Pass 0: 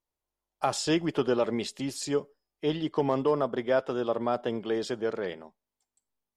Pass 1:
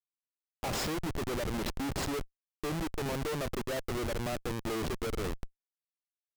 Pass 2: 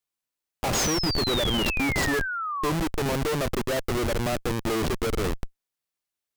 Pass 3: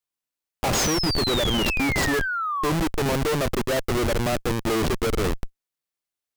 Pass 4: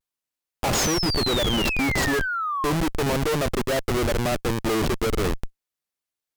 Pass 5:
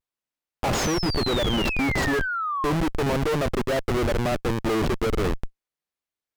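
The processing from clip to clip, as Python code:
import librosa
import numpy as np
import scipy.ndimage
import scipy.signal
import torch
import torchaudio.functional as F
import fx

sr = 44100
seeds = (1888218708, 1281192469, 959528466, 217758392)

y1 = fx.schmitt(x, sr, flips_db=-32.5)
y1 = fx.wow_flutter(y1, sr, seeds[0], rate_hz=2.1, depth_cents=21.0)
y1 = y1 * 10.0 ** (-3.0 / 20.0)
y2 = fx.spec_paint(y1, sr, seeds[1], shape='fall', start_s=0.74, length_s=1.97, low_hz=990.0, high_hz=6800.0, level_db=-38.0)
y2 = y2 * 10.0 ** (8.0 / 20.0)
y3 = fx.leveller(y2, sr, passes=1)
y4 = fx.vibrato(y3, sr, rate_hz=0.34, depth_cents=26.0)
y5 = fx.high_shelf(y4, sr, hz=4500.0, db=-8.5)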